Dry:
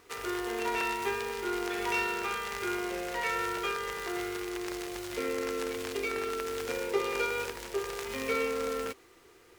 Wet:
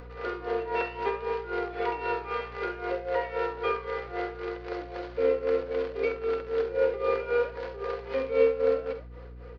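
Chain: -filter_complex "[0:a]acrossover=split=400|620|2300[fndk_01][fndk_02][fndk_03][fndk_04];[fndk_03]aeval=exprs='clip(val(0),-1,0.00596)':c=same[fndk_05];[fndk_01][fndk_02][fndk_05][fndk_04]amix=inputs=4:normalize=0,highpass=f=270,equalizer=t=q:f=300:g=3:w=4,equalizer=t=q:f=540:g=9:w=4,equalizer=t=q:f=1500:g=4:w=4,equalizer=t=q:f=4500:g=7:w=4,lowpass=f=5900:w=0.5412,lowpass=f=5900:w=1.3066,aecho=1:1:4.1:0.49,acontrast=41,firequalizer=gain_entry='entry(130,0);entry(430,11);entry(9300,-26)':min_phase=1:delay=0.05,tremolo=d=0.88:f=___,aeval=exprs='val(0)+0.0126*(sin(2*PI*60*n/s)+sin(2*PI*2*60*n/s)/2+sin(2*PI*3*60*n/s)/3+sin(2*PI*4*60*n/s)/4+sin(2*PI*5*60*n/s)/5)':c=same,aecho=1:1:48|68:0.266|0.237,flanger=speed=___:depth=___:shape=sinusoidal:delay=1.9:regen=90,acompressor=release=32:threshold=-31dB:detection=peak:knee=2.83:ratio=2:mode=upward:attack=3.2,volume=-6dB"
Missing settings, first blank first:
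3.8, 0.65, 7.7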